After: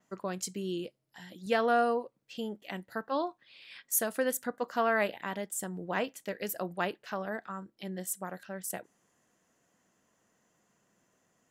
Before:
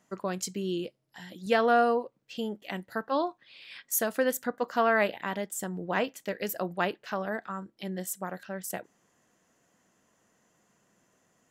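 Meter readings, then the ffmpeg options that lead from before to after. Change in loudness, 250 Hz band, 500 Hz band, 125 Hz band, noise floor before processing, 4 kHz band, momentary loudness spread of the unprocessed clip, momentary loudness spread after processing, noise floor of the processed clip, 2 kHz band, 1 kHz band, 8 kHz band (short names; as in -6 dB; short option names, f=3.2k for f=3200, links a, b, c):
-3.0 dB, -3.5 dB, -3.5 dB, -3.5 dB, -72 dBFS, -3.5 dB, 16 LU, 15 LU, -76 dBFS, -3.5 dB, -3.5 dB, 0.0 dB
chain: -af "adynamicequalizer=threshold=0.00224:dfrequency=9700:dqfactor=1.7:tfrequency=9700:tqfactor=1.7:attack=5:release=100:ratio=0.375:range=3.5:mode=boostabove:tftype=bell,volume=-3.5dB"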